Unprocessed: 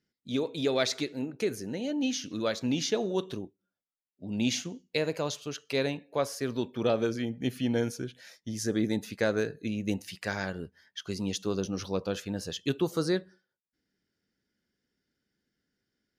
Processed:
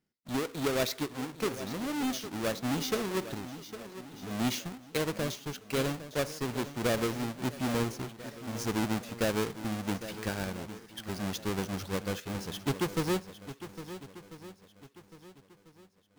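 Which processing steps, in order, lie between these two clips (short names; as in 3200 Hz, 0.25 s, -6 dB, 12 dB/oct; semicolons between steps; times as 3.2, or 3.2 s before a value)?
half-waves squared off; swung echo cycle 1.344 s, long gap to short 1.5:1, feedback 31%, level -13 dB; gain -6.5 dB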